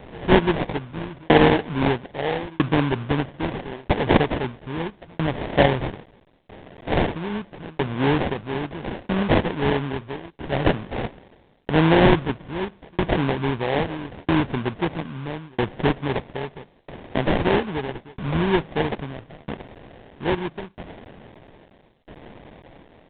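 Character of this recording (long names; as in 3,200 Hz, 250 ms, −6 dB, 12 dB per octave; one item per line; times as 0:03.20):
a quantiser's noise floor 8 bits, dither triangular
tremolo saw down 0.77 Hz, depth 100%
aliases and images of a low sample rate 1,300 Hz, jitter 20%
A-law companding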